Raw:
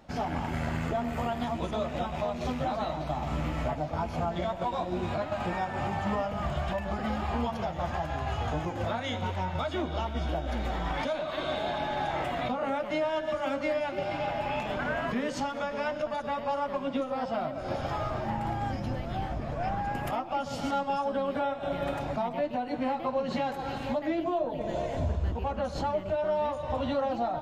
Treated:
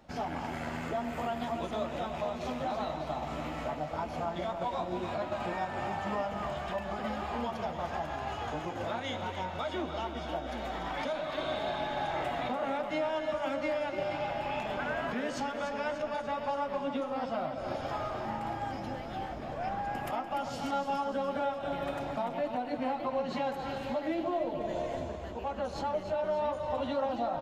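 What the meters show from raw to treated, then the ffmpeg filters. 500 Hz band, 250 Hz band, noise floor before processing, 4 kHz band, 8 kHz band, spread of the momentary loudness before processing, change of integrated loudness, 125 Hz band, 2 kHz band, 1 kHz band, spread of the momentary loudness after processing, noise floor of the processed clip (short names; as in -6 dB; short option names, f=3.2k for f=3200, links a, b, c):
-2.5 dB, -4.0 dB, -37 dBFS, -2.5 dB, -2.5 dB, 3 LU, -3.0 dB, -9.0 dB, -2.5 dB, -2.5 dB, 4 LU, -40 dBFS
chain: -filter_complex "[0:a]acrossover=split=210[a][b];[a]acompressor=threshold=-42dB:ratio=6[c];[b]aecho=1:1:293|586|879|1172|1465|1758:0.355|0.192|0.103|0.0559|0.0302|0.0163[d];[c][d]amix=inputs=2:normalize=0,volume=-3dB"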